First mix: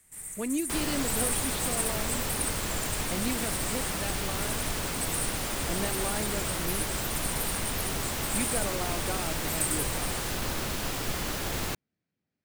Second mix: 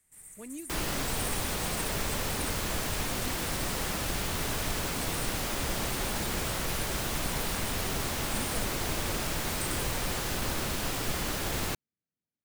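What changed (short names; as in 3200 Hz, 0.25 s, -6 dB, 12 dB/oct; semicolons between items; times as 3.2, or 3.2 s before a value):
speech -12.0 dB; first sound -9.5 dB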